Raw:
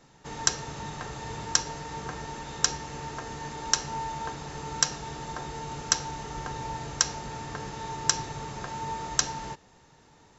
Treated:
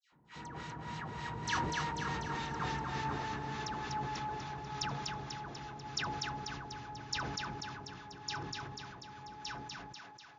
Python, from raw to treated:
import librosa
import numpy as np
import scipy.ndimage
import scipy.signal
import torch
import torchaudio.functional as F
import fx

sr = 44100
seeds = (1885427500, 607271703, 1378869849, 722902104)

y = fx.doppler_pass(x, sr, speed_mps=22, closest_m=24.0, pass_at_s=2.48)
y = scipy.signal.sosfilt(scipy.signal.butter(2, 70.0, 'highpass', fs=sr, output='sos'), y)
y = fx.peak_eq(y, sr, hz=540.0, db=-9.5, octaves=0.86)
y = fx.dispersion(y, sr, late='lows', ms=123.0, hz=1700.0)
y = fx.filter_lfo_lowpass(y, sr, shape='sine', hz=3.4, low_hz=570.0, high_hz=4300.0, q=1.0)
y = fx.echo_thinned(y, sr, ms=245, feedback_pct=59, hz=500.0, wet_db=-3.0)
y = fx.sustainer(y, sr, db_per_s=31.0)
y = F.gain(torch.from_numpy(y), 1.0).numpy()